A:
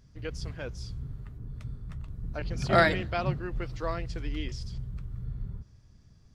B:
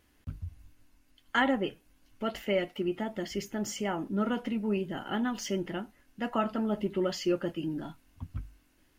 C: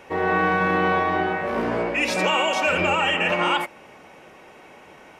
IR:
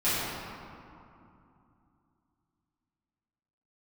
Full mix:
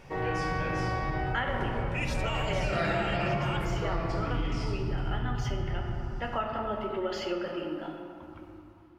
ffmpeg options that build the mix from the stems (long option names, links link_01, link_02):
-filter_complex "[0:a]acompressor=threshold=-41dB:ratio=1.5,volume=0dB,asplit=2[link_01][link_02];[link_02]volume=-3.5dB[link_03];[1:a]acrossover=split=390 4300:gain=0.126 1 0.224[link_04][link_05][link_06];[link_04][link_05][link_06]amix=inputs=3:normalize=0,dynaudnorm=framelen=710:gausssize=3:maxgain=8.5dB,volume=-7.5dB,asplit=2[link_07][link_08];[link_08]volume=-13dB[link_09];[2:a]volume=-9dB,asplit=2[link_10][link_11];[link_11]volume=-20dB[link_12];[3:a]atrim=start_sample=2205[link_13];[link_03][link_09][link_12]amix=inputs=3:normalize=0[link_14];[link_14][link_13]afir=irnorm=-1:irlink=0[link_15];[link_01][link_07][link_10][link_15]amix=inputs=4:normalize=0,acompressor=threshold=-28dB:ratio=3"